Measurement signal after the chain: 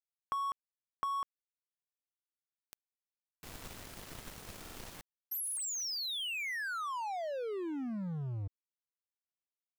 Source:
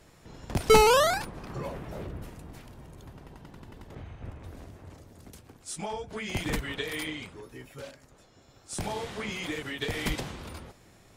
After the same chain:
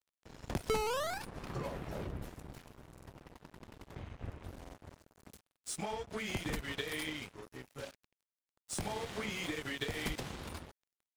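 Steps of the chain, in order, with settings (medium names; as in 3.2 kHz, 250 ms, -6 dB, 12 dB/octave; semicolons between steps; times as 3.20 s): compression 4:1, threshold -34 dBFS; crossover distortion -47 dBFS; buffer glitch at 2.93/4.61/5.43 s, samples 2048, times 2; trim +1 dB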